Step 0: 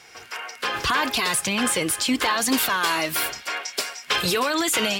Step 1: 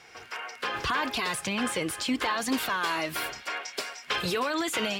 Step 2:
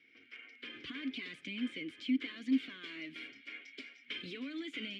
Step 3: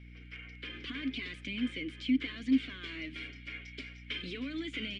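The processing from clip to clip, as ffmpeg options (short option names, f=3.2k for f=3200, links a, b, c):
-filter_complex "[0:a]highshelf=f=5.2k:g=-9.5,asplit=2[a][b];[b]acompressor=threshold=-31dB:ratio=6,volume=-2dB[c];[a][c]amix=inputs=2:normalize=0,volume=-7dB"
-filter_complex "[0:a]adynamicsmooth=sensitivity=8:basefreq=4.9k,asplit=3[a][b][c];[a]bandpass=f=270:t=q:w=8,volume=0dB[d];[b]bandpass=f=2.29k:t=q:w=8,volume=-6dB[e];[c]bandpass=f=3.01k:t=q:w=8,volume=-9dB[f];[d][e][f]amix=inputs=3:normalize=0"
-af "aeval=exprs='val(0)+0.00224*(sin(2*PI*60*n/s)+sin(2*PI*2*60*n/s)/2+sin(2*PI*3*60*n/s)/3+sin(2*PI*4*60*n/s)/4+sin(2*PI*5*60*n/s)/5)':c=same,aresample=22050,aresample=44100,volume=3.5dB"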